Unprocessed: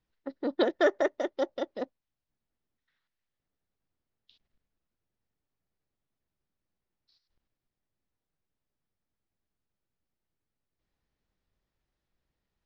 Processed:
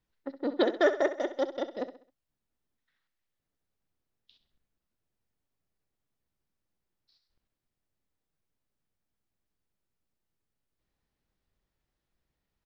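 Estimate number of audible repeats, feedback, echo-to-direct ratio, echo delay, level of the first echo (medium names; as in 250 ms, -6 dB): 3, 37%, -11.5 dB, 66 ms, -12.0 dB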